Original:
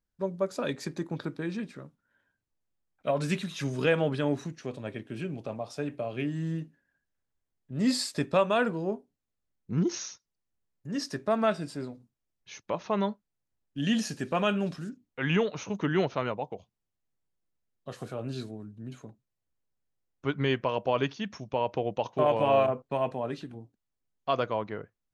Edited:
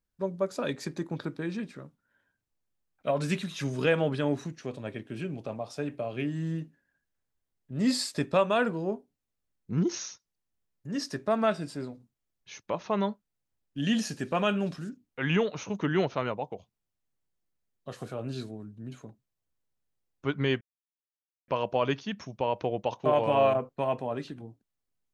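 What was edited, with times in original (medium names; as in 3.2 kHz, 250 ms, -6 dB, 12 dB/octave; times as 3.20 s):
20.61 s: insert silence 0.87 s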